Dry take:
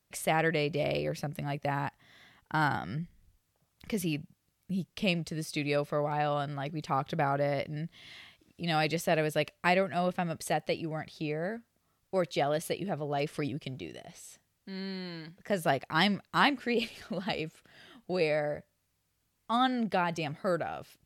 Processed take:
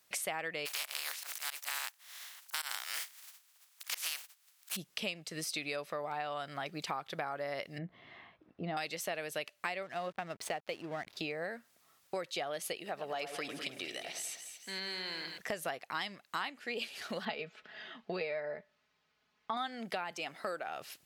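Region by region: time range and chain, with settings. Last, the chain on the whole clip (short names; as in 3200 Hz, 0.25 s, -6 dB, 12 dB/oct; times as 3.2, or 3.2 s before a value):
0.65–4.75 spectral contrast lowered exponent 0.31 + HPF 930 Hz + auto swell 0.125 s
7.78–8.77 LPF 1000 Hz + low shelf 170 Hz +6.5 dB + doubler 16 ms -14 dB
9.83–11.17 high shelf 5600 Hz -11 dB + backlash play -44 dBFS
12.77–15.38 low shelf 240 Hz -11 dB + split-band echo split 1800 Hz, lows 0.101 s, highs 0.222 s, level -9 dB
17.25–19.57 air absorption 230 m + comb 4.7 ms, depth 57%
20.11–20.67 HPF 200 Hz + notch 4000 Hz, Q 26
whole clip: HPF 960 Hz 6 dB/oct; compressor 6:1, threshold -46 dBFS; gain +10 dB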